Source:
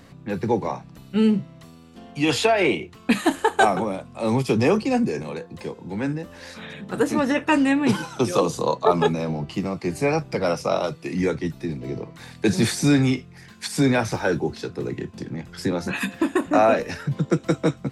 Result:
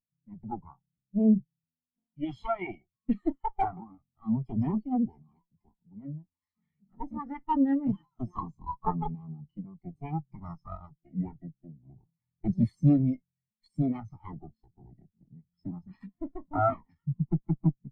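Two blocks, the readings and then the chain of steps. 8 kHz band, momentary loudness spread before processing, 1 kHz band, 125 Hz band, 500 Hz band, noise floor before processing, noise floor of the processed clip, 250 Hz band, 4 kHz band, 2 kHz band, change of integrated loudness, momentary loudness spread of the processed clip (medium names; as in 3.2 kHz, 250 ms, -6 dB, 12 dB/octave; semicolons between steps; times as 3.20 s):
under -40 dB, 14 LU, -9.5 dB, -5.5 dB, -17.5 dB, -46 dBFS, under -85 dBFS, -7.0 dB, under -30 dB, -24.5 dB, -8.0 dB, 19 LU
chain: comb filter that takes the minimum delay 0.95 ms; spectral contrast expander 2.5:1; trim -5 dB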